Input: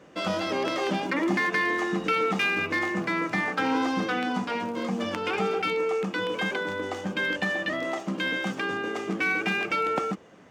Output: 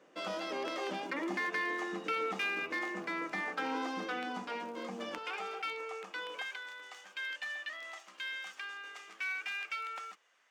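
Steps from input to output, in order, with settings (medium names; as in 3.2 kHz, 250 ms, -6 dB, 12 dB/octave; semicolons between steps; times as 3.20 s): high-pass 300 Hz 12 dB/octave, from 5.18 s 710 Hz, from 6.42 s 1.5 kHz; trim -9 dB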